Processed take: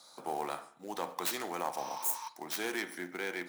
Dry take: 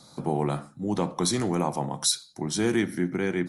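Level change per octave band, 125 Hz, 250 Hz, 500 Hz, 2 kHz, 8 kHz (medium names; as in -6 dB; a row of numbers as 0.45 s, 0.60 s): -27.0 dB, -17.5 dB, -11.0 dB, -3.5 dB, -10.5 dB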